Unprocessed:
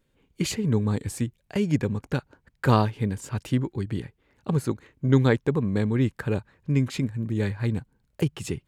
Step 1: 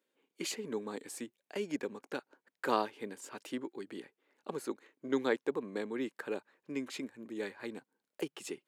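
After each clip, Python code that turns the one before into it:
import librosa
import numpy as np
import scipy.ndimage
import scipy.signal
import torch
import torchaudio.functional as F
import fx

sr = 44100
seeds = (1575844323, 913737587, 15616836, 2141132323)

y = scipy.signal.sosfilt(scipy.signal.butter(4, 290.0, 'highpass', fs=sr, output='sos'), x)
y = F.gain(torch.from_numpy(y), -7.5).numpy()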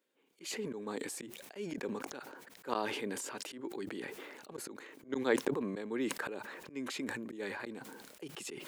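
y = fx.auto_swell(x, sr, attack_ms=162.0)
y = fx.sustainer(y, sr, db_per_s=30.0)
y = F.gain(torch.from_numpy(y), 1.0).numpy()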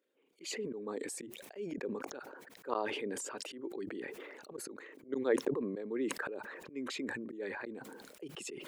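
y = fx.envelope_sharpen(x, sr, power=1.5)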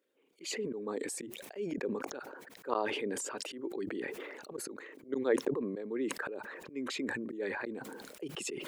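y = fx.rider(x, sr, range_db=4, speed_s=2.0)
y = F.gain(torch.from_numpy(y), 1.5).numpy()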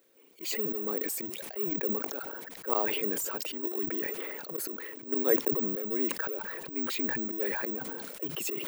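y = fx.law_mismatch(x, sr, coded='mu')
y = (np.kron(y[::2], np.eye(2)[0]) * 2)[:len(y)]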